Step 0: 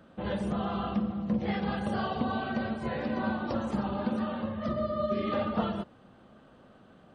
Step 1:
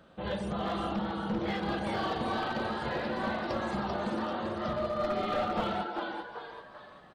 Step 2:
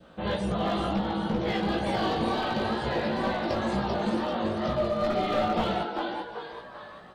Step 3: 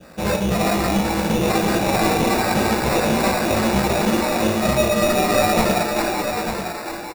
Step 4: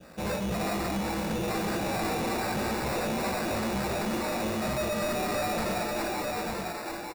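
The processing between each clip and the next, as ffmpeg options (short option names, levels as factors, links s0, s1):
-filter_complex "[0:a]equalizer=f=100:t=o:w=0.67:g=-4,equalizer=f=250:t=o:w=0.67:g=-7,equalizer=f=4000:t=o:w=0.67:g=4,asplit=6[s0][s1][s2][s3][s4][s5];[s1]adelay=390,afreqshift=130,volume=0.596[s6];[s2]adelay=780,afreqshift=260,volume=0.251[s7];[s3]adelay=1170,afreqshift=390,volume=0.105[s8];[s4]adelay=1560,afreqshift=520,volume=0.0442[s9];[s5]adelay=1950,afreqshift=650,volume=0.0186[s10];[s0][s6][s7][s8][s9][s10]amix=inputs=6:normalize=0,aeval=exprs='clip(val(0),-1,0.0422)':c=same"
-af "adynamicequalizer=threshold=0.00355:dfrequency=1300:dqfactor=1.4:tfrequency=1300:tqfactor=1.4:attack=5:release=100:ratio=0.375:range=2.5:mode=cutabove:tftype=bell,flanger=delay=16:depth=3.1:speed=2.1,volume=2.82"
-af "acrusher=samples=14:mix=1:aa=0.000001,aecho=1:1:894:0.422,volume=2.66"
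-af "asoftclip=type=tanh:threshold=0.0944,volume=0.501"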